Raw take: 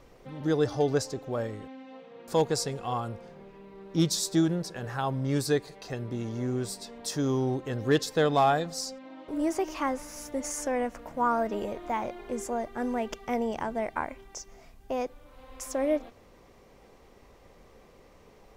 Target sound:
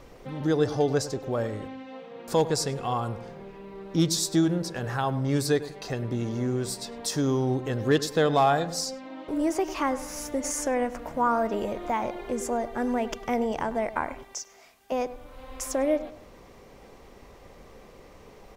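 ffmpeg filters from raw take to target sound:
ffmpeg -i in.wav -filter_complex "[0:a]asettb=1/sr,asplit=3[link_01][link_02][link_03];[link_01]atrim=end=14.234[link_04];[link_02]atrim=start=14.23:end=14.92,asetpts=PTS-STARTPTS,afade=type=in:duration=0.004:curve=qsin,afade=type=out:start_time=0.686:duration=0.004:curve=qsin,highpass=frequency=1200:poles=1[link_05];[link_03]atrim=start=14.916[link_06];[link_04][link_05]acrossfade=duration=0.004:curve1=hsin:curve2=qsin[link_07];[link_07][link_06]acrossfade=duration=0.004:curve1=qsin:curve2=hsin,asplit=2[link_08][link_09];[link_09]acompressor=threshold=-35dB:ratio=6,volume=-0.5dB[link_10];[link_08][link_10]amix=inputs=2:normalize=0,asplit=2[link_11][link_12];[link_12]adelay=101,lowpass=frequency=1900:poles=1,volume=-14dB,asplit=2[link_13][link_14];[link_14]adelay=101,lowpass=frequency=1900:poles=1,volume=0.35,asplit=2[link_15][link_16];[link_16]adelay=101,lowpass=frequency=1900:poles=1,volume=0.35[link_17];[link_11][link_13][link_15][link_17]amix=inputs=4:normalize=0" out.wav

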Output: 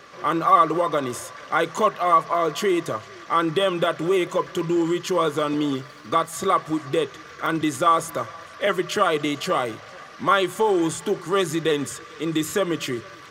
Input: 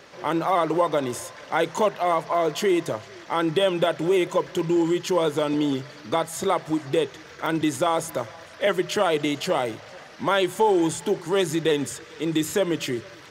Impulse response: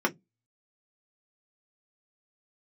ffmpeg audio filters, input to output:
-filter_complex "[0:a]asettb=1/sr,asplit=3[link_01][link_02][link_03];[link_01]atrim=end=5.474[link_04];[link_02]atrim=start=5.47:end=6.33,asetpts=PTS-STARTPTS,afade=type=in:duration=0.004:curve=qsin,afade=type=out:start_time=0.856:duration=0.004:curve=qsin,aeval=exprs='sgn(val(0))*max(abs(val(0))-0.00237,0)':channel_layout=same[link_05];[link_03]atrim=start=6.326[link_06];[link_04][link_05]acrossfade=duration=0.004:curve1=hsin:curve2=qsin[link_07];[link_07][link_06]acrossfade=duration=0.004:curve1=qsin:curve2=hsin,asplit=2[link_08][link_09];[link_09]highpass=frequency=1100:width_type=q:width=12[link_10];[1:a]atrim=start_sample=2205[link_11];[link_10][link_11]afir=irnorm=-1:irlink=0,volume=-24dB[link_12];[link_08][link_12]amix=inputs=2:normalize=0"

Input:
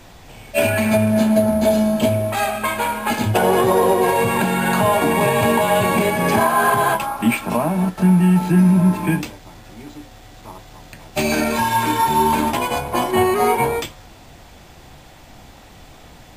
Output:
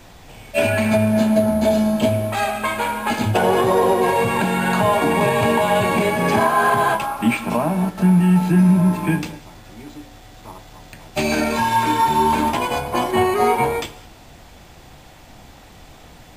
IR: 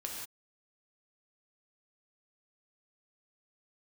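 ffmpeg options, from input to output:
-filter_complex "[0:a]acrossover=split=7900[link_01][link_02];[link_02]acompressor=threshold=-38dB:ratio=4:attack=1:release=60[link_03];[link_01][link_03]amix=inputs=2:normalize=0,asplit=2[link_04][link_05];[1:a]atrim=start_sample=2205,asetrate=38367,aresample=44100[link_06];[link_05][link_06]afir=irnorm=-1:irlink=0,volume=-13dB[link_07];[link_04][link_07]amix=inputs=2:normalize=0,volume=-2dB"

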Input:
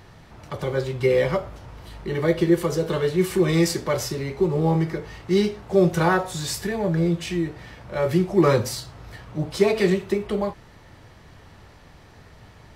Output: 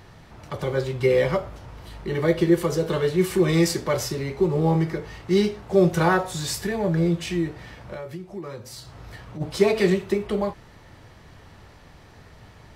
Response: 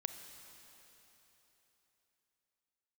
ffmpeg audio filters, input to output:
-filter_complex "[0:a]asplit=3[link_01][link_02][link_03];[link_01]afade=type=out:start_time=7.93:duration=0.02[link_04];[link_02]acompressor=threshold=-34dB:ratio=6,afade=type=in:start_time=7.93:duration=0.02,afade=type=out:start_time=9.4:duration=0.02[link_05];[link_03]afade=type=in:start_time=9.4:duration=0.02[link_06];[link_04][link_05][link_06]amix=inputs=3:normalize=0"

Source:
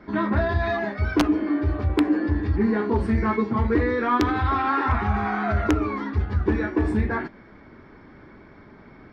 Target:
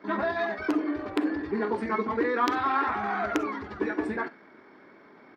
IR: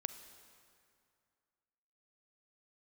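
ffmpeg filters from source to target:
-filter_complex "[0:a]highpass=320,atempo=1.7[link_01];[1:a]atrim=start_sample=2205,atrim=end_sample=3087[link_02];[link_01][link_02]afir=irnorm=-1:irlink=0"

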